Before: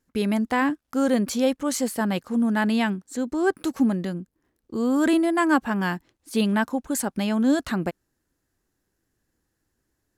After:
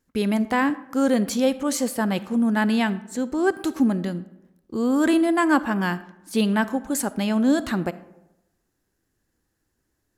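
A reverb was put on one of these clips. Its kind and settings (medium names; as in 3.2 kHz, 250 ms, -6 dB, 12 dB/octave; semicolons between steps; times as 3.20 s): algorithmic reverb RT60 0.96 s, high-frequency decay 0.5×, pre-delay 5 ms, DRR 15 dB; trim +1 dB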